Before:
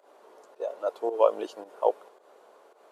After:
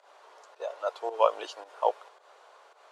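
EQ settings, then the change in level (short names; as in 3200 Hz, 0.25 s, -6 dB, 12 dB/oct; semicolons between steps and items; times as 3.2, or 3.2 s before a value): HPF 870 Hz 12 dB/oct; LPF 5700 Hz 12 dB/oct; high shelf 4300 Hz +5.5 dB; +5.0 dB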